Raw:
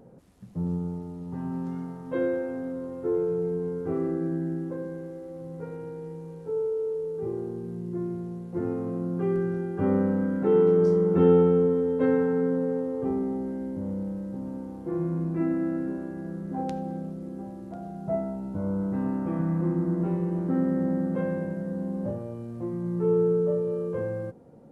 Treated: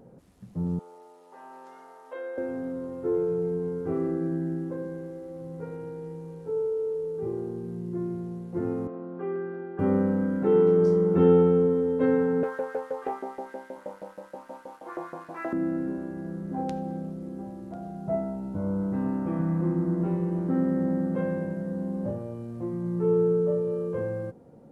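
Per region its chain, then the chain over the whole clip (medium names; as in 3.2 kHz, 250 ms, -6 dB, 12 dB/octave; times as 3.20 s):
0.79–2.38 s: high-pass 520 Hz 24 dB/octave + compression 2.5:1, threshold -35 dBFS
8.87–9.79 s: band-pass 250–2200 Hz + bass shelf 340 Hz -8 dB
12.43–15.53 s: LFO high-pass saw up 6.3 Hz 580–1800 Hz + waveshaping leveller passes 1
whole clip: none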